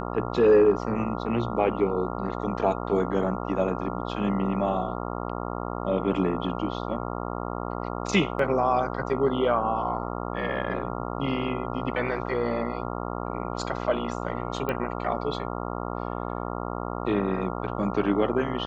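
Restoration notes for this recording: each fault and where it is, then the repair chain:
buzz 60 Hz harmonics 23 -32 dBFS
8.39 gap 3.6 ms
14.69 pop -16 dBFS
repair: de-click; de-hum 60 Hz, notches 23; interpolate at 8.39, 3.6 ms

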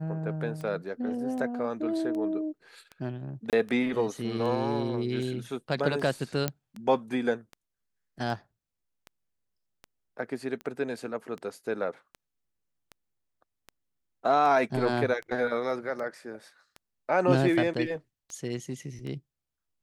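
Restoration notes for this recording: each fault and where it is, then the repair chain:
tick 78 rpm -27 dBFS
3.5–3.53 gap 28 ms
6.48 pop -12 dBFS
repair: de-click; interpolate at 3.5, 28 ms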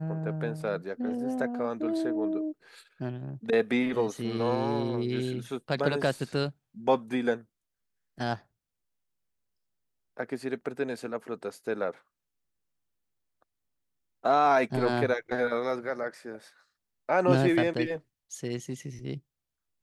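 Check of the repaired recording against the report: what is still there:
none

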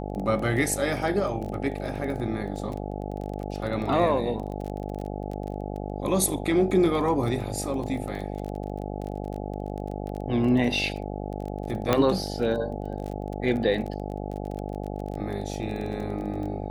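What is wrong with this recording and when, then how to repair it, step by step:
buzz 50 Hz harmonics 17 -33 dBFS
crackle 22/s -32 dBFS
11.93 pop -7 dBFS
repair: de-click; de-hum 50 Hz, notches 17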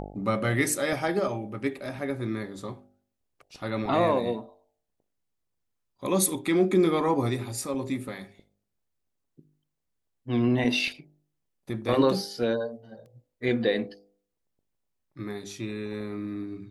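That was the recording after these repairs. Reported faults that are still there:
none

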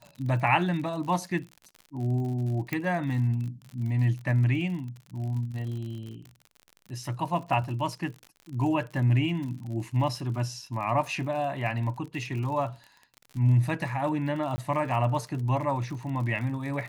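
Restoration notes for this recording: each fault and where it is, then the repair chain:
crackle 54/s -36 dBFS
2.73 pop -15 dBFS
14.56–14.58 gap 20 ms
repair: de-click; interpolate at 14.56, 20 ms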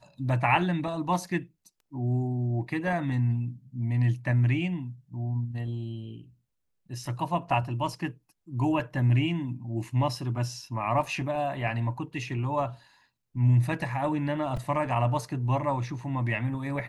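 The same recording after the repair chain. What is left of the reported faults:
none

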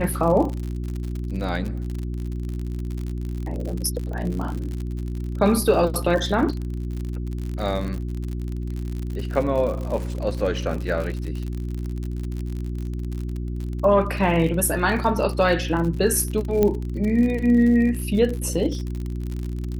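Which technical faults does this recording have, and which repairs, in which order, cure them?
crackle 59/s -28 dBFS
hum 60 Hz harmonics 6 -28 dBFS
16.63 pop -8 dBFS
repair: de-click; de-hum 60 Hz, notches 6

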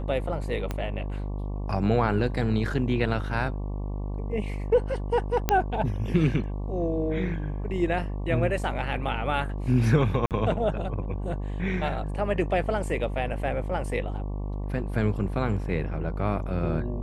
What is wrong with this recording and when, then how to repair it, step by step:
buzz 50 Hz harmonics 23 -31 dBFS
0.71 pop -16 dBFS
5.49 pop -7 dBFS
10.26–10.31 gap 48 ms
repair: de-click; de-hum 50 Hz, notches 23; interpolate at 10.26, 48 ms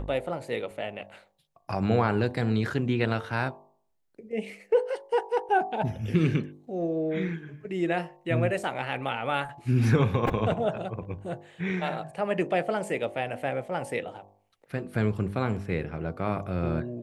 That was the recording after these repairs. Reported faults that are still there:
0.71 pop

